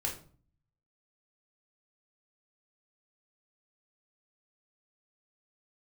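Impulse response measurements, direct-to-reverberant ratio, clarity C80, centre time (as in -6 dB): -3.0 dB, 14.0 dB, 22 ms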